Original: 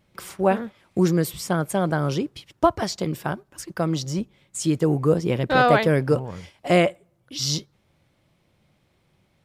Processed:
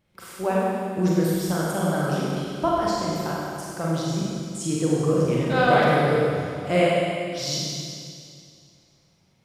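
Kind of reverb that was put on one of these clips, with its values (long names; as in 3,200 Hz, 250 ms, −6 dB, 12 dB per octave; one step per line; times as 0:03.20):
four-comb reverb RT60 2.3 s, combs from 33 ms, DRR −5.5 dB
level −7 dB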